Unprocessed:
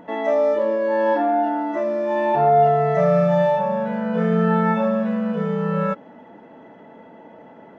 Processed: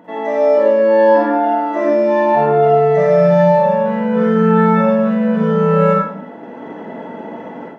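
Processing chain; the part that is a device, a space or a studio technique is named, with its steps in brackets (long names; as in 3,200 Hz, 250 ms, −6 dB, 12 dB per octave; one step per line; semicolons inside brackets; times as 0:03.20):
far laptop microphone (convolution reverb RT60 0.65 s, pre-delay 41 ms, DRR −2.5 dB; high-pass filter 130 Hz; automatic gain control gain up to 11.5 dB)
level −1 dB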